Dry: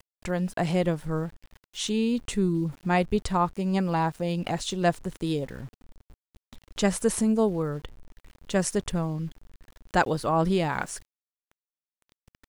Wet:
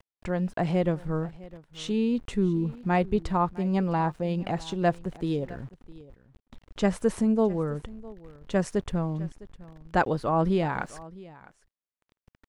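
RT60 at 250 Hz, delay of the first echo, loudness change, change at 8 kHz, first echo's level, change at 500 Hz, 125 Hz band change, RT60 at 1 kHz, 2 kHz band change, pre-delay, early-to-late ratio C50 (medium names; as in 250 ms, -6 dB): no reverb, 657 ms, -0.5 dB, -12.0 dB, -20.0 dB, 0.0 dB, 0.0 dB, no reverb, -2.5 dB, no reverb, no reverb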